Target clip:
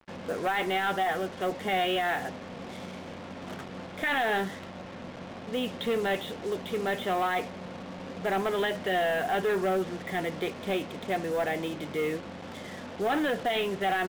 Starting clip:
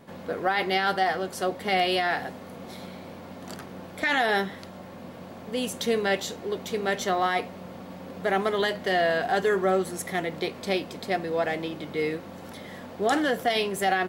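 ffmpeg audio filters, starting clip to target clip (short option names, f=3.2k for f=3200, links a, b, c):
-af "aresample=8000,asoftclip=type=tanh:threshold=-22dB,aresample=44100,acrusher=bits=6:mix=0:aa=0.5"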